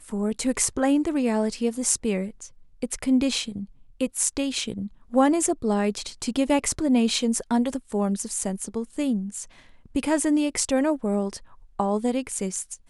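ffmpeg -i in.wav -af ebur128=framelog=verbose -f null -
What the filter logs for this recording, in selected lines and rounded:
Integrated loudness:
  I:         -24.8 LUFS
  Threshold: -35.3 LUFS
Loudness range:
  LRA:         3.0 LU
  Threshold: -45.3 LUFS
  LRA low:   -26.6 LUFS
  LRA high:  -23.6 LUFS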